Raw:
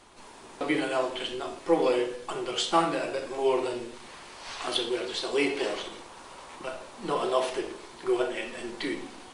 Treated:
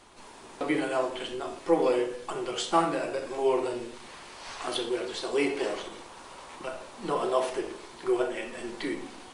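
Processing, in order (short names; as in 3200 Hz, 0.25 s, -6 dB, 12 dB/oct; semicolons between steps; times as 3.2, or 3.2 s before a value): dynamic EQ 3500 Hz, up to -5 dB, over -45 dBFS, Q 1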